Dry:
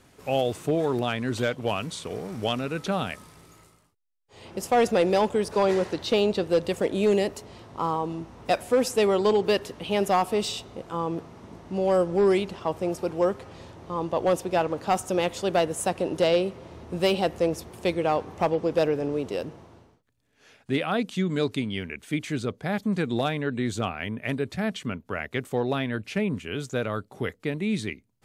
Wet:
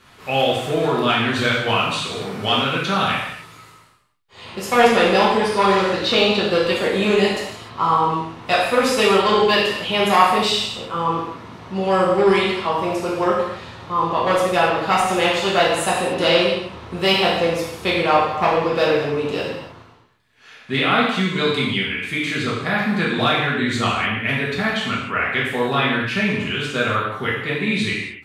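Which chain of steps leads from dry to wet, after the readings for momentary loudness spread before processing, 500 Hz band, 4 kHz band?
11 LU, +5.0 dB, +13.5 dB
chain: high-order bell 2 kHz +8.5 dB 2.6 oct; gated-style reverb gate 320 ms falling, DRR -6.5 dB; trim -2 dB

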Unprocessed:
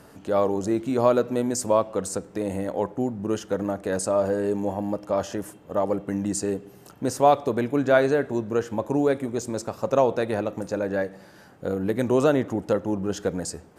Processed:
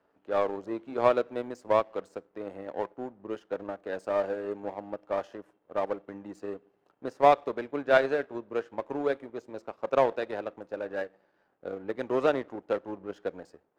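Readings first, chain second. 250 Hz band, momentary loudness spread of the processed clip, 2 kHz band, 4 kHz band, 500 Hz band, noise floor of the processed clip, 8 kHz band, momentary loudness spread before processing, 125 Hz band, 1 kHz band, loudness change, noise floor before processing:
-12.0 dB, 16 LU, -2.5 dB, -6.0 dB, -5.5 dB, -72 dBFS, under -25 dB, 10 LU, -16.5 dB, -3.0 dB, -5.5 dB, -50 dBFS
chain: three-band isolator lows -16 dB, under 300 Hz, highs -20 dB, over 4.3 kHz; power-law waveshaper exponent 1.4; tape noise reduction on one side only decoder only

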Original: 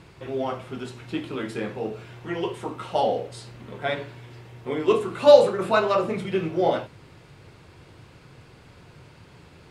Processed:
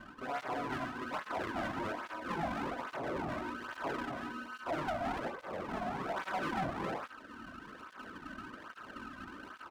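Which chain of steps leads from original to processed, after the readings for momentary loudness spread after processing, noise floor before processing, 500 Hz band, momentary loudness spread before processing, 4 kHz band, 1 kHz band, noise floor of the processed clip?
12 LU, -51 dBFS, -19.5 dB, 20 LU, -13.5 dB, -8.0 dB, -54 dBFS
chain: ring modulator 760 Hz; comb 3.1 ms, depth 64%; gated-style reverb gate 300 ms rising, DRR 4.5 dB; compression 6:1, threshold -23 dBFS, peak gain reduction 14.5 dB; steep low-pass 920 Hz 48 dB/octave; bass shelf 220 Hz -10 dB; full-wave rectifier; gain riding within 5 dB 2 s; saturation -25.5 dBFS, distortion -19 dB; cancelling through-zero flanger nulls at 1.2 Hz, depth 2.4 ms; trim +6.5 dB

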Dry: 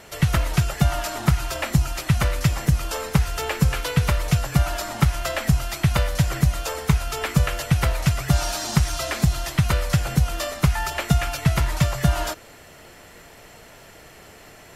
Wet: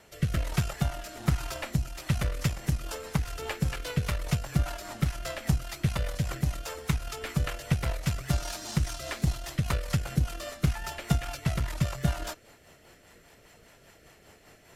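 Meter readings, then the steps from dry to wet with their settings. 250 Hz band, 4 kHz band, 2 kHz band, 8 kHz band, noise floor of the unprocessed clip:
-7.5 dB, -9.0 dB, -9.5 dB, -9.5 dB, -46 dBFS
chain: Chebyshev shaper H 3 -21 dB, 8 -25 dB, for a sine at -5 dBFS; rotary cabinet horn 1.2 Hz, later 5 Hz, at 1.81 s; trim -5 dB

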